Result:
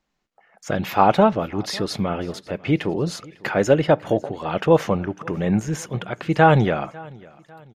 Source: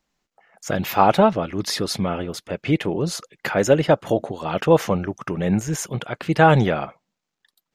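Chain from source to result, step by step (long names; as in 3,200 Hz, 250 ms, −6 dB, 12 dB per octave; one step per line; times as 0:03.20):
high-shelf EQ 6,400 Hz −10 dB
repeating echo 549 ms, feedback 41%, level −23.5 dB
on a send at −18 dB: convolution reverb RT60 0.40 s, pre-delay 3 ms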